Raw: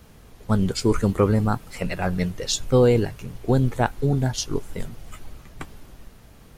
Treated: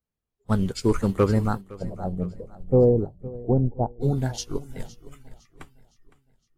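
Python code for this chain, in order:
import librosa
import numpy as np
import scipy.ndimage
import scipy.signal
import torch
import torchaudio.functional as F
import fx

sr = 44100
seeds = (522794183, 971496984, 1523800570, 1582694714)

y = np.clip(x, -10.0 ** (-10.5 / 20.0), 10.0 ** (-10.5 / 20.0))
y = fx.steep_lowpass(y, sr, hz=840.0, slope=36, at=(1.61, 4.01))
y = fx.noise_reduce_blind(y, sr, reduce_db=28)
y = fx.echo_feedback(y, sr, ms=511, feedback_pct=44, wet_db=-14.0)
y = fx.upward_expand(y, sr, threshold_db=-38.0, expansion=1.5)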